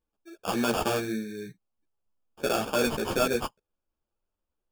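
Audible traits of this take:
aliases and images of a low sample rate 2,000 Hz, jitter 0%
a shimmering, thickened sound

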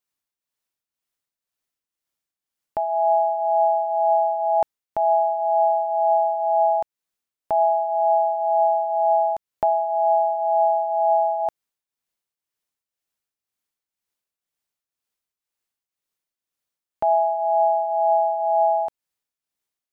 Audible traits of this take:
tremolo triangle 2 Hz, depth 65%

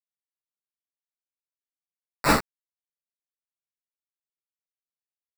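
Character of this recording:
aliases and images of a low sample rate 3,200 Hz, jitter 0%
sample-and-hold tremolo 1.8 Hz, depth 90%
a quantiser's noise floor 6 bits, dither none
a shimmering, thickened sound

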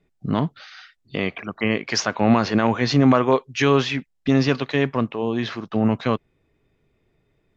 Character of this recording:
background noise floor −69 dBFS
spectral slope −5.0 dB per octave

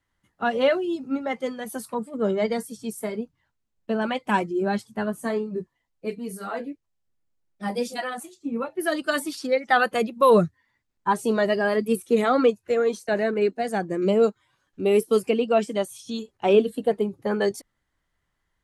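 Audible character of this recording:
background noise floor −77 dBFS
spectral slope −4.0 dB per octave

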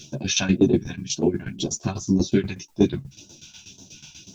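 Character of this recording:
phaser sweep stages 2, 1.9 Hz, lowest notch 340–2,000 Hz
a quantiser's noise floor 12 bits, dither triangular
tremolo saw down 8.2 Hz, depth 90%
a shimmering, thickened sound

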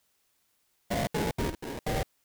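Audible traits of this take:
aliases and images of a low sample rate 1,300 Hz, jitter 20%
chopped level 1.1 Hz, depth 60%, duty 65%
a quantiser's noise floor 12 bits, dither triangular

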